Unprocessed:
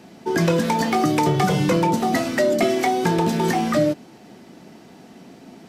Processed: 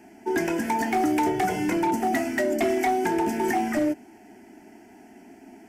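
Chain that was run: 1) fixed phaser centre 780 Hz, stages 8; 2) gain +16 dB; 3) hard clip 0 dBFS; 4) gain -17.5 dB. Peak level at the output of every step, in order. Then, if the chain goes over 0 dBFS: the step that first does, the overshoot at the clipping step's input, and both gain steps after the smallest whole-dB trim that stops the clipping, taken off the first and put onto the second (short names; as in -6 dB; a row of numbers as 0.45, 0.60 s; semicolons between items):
-9.5, +6.5, 0.0, -17.5 dBFS; step 2, 6.5 dB; step 2 +9 dB, step 4 -10.5 dB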